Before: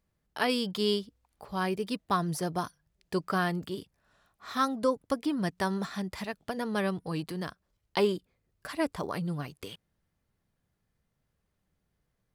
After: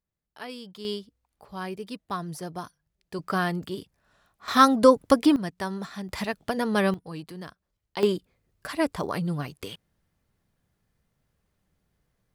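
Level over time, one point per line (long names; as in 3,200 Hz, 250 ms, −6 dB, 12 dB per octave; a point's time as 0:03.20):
−11 dB
from 0:00.85 −4 dB
from 0:03.19 +2.5 dB
from 0:04.48 +11 dB
from 0:05.36 −1.5 dB
from 0:06.09 +6.5 dB
from 0:06.94 −4 dB
from 0:08.03 +4.5 dB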